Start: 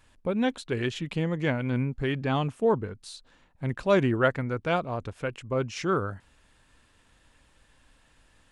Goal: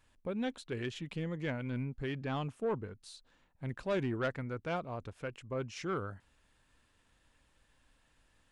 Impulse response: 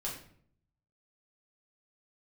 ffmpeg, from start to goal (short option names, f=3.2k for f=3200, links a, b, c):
-af "asoftclip=type=tanh:threshold=-17.5dB,volume=-8.5dB"